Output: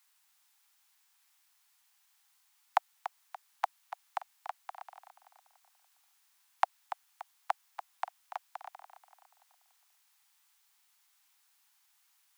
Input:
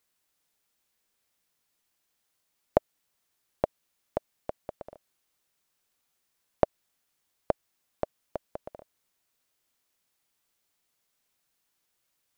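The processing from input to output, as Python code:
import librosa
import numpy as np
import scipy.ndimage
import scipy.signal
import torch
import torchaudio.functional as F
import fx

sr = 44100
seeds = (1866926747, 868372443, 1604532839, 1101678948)

y = scipy.signal.sosfilt(scipy.signal.butter(16, 750.0, 'highpass', fs=sr, output='sos'), x)
y = fx.echo_feedback(y, sr, ms=288, feedback_pct=43, wet_db=-11.5)
y = y * librosa.db_to_amplitude(6.5)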